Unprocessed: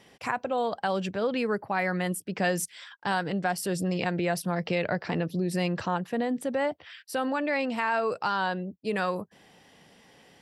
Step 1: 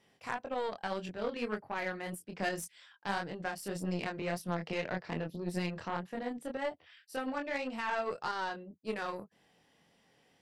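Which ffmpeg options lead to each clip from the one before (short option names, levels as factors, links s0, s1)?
-af "flanger=delay=22.5:depth=2.9:speed=1.8,aeval=exprs='0.158*(cos(1*acos(clip(val(0)/0.158,-1,1)))-cos(1*PI/2))+0.00501*(cos(4*acos(clip(val(0)/0.158,-1,1)))-cos(4*PI/2))+0.01*(cos(7*acos(clip(val(0)/0.158,-1,1)))-cos(7*PI/2))':c=same,volume=0.631"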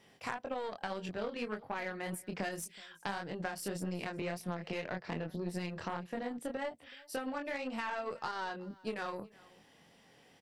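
-af "acompressor=threshold=0.01:ratio=6,aecho=1:1:374:0.0708,volume=1.88"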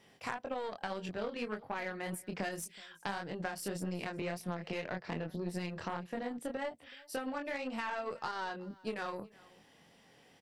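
-af anull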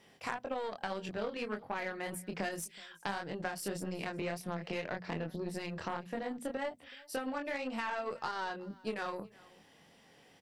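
-af "bandreject=f=60:t=h:w=6,bandreject=f=120:t=h:w=6,bandreject=f=180:t=h:w=6,bandreject=f=240:t=h:w=6,volume=1.12"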